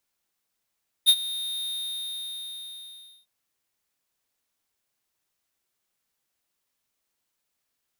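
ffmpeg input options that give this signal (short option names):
-f lavfi -i "aevalsrc='0.2*(2*lt(mod(3690*t,1),0.5)-1)':d=2.2:s=44100,afade=t=in:d=0.031,afade=t=out:st=0.031:d=0.057:silence=0.133,afade=t=out:st=0.62:d=1.58"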